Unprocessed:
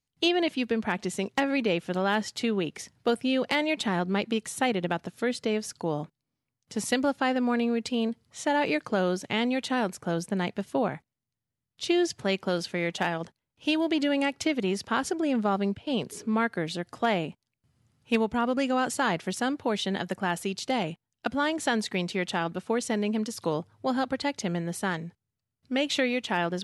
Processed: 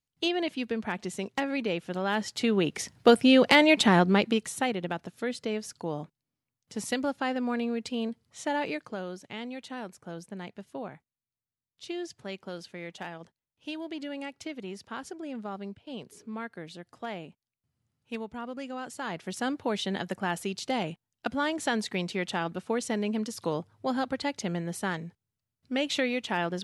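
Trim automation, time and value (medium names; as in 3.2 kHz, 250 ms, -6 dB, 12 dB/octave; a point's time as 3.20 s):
2.00 s -4 dB
2.95 s +7 dB
3.97 s +7 dB
4.76 s -4 dB
8.55 s -4 dB
9.06 s -11.5 dB
18.92 s -11.5 dB
19.48 s -2 dB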